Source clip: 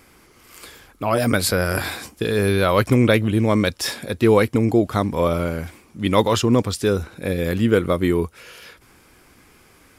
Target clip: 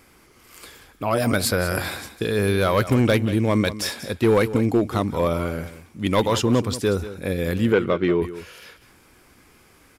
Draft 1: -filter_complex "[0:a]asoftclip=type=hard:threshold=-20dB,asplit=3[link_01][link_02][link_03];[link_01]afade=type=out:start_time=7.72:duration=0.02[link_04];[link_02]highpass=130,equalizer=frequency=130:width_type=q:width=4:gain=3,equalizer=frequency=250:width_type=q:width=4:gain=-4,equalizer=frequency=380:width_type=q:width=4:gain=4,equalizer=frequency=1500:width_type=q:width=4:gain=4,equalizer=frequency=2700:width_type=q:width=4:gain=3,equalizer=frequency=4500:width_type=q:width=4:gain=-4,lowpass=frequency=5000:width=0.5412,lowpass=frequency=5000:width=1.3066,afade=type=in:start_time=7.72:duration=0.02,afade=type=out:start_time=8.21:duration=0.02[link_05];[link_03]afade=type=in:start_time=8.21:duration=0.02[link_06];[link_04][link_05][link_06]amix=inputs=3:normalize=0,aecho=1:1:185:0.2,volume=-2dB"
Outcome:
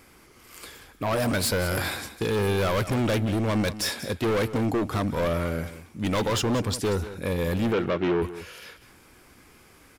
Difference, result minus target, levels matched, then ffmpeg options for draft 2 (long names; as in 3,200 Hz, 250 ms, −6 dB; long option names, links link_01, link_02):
hard clipping: distortion +13 dB
-filter_complex "[0:a]asoftclip=type=hard:threshold=-9.5dB,asplit=3[link_01][link_02][link_03];[link_01]afade=type=out:start_time=7.72:duration=0.02[link_04];[link_02]highpass=130,equalizer=frequency=130:width_type=q:width=4:gain=3,equalizer=frequency=250:width_type=q:width=4:gain=-4,equalizer=frequency=380:width_type=q:width=4:gain=4,equalizer=frequency=1500:width_type=q:width=4:gain=4,equalizer=frequency=2700:width_type=q:width=4:gain=3,equalizer=frequency=4500:width_type=q:width=4:gain=-4,lowpass=frequency=5000:width=0.5412,lowpass=frequency=5000:width=1.3066,afade=type=in:start_time=7.72:duration=0.02,afade=type=out:start_time=8.21:duration=0.02[link_05];[link_03]afade=type=in:start_time=8.21:duration=0.02[link_06];[link_04][link_05][link_06]amix=inputs=3:normalize=0,aecho=1:1:185:0.2,volume=-2dB"